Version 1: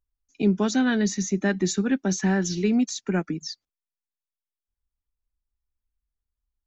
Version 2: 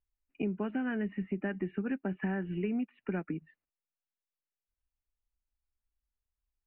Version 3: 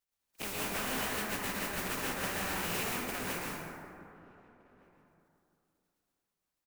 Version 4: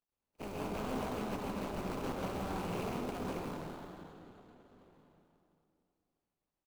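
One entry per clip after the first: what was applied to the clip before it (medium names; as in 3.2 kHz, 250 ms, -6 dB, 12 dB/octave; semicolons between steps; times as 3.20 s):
Chebyshev low-pass 2.9 kHz, order 8; compression, threshold -26 dBFS, peak gain reduction 9.5 dB; trim -4 dB
spectral contrast reduction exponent 0.18; echo from a far wall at 260 m, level -23 dB; plate-style reverb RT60 2.7 s, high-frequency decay 0.35×, pre-delay 100 ms, DRR -6 dB; trim -7 dB
median filter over 25 samples; delay 269 ms -12.5 dB; trim +2 dB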